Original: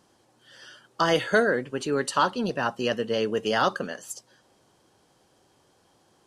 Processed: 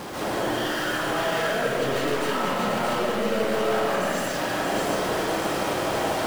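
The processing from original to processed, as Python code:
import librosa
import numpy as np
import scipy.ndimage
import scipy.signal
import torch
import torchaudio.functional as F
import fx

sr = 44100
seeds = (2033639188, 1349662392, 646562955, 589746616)

p1 = np.sign(x) * np.sqrt(np.mean(np.square(x)))
p2 = fx.high_shelf(p1, sr, hz=3500.0, db=-9.5)
p3 = p2 + fx.echo_split(p2, sr, split_hz=1800.0, low_ms=163, high_ms=628, feedback_pct=52, wet_db=-3, dry=0)
p4 = fx.rev_freeverb(p3, sr, rt60_s=0.89, hf_ratio=0.55, predelay_ms=105, drr_db=-7.5)
p5 = fx.sample_hold(p4, sr, seeds[0], rate_hz=8800.0, jitter_pct=0)
p6 = p4 + F.gain(torch.from_numpy(p5), -10.5).numpy()
p7 = fx.low_shelf(p6, sr, hz=77.0, db=-12.0)
y = F.gain(torch.from_numpy(p7), -6.5).numpy()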